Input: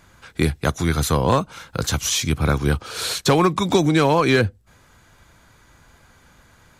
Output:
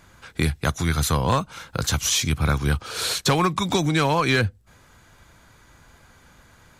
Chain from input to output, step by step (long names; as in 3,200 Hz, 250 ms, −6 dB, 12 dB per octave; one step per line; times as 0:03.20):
dynamic equaliser 390 Hz, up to −7 dB, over −30 dBFS, Q 0.71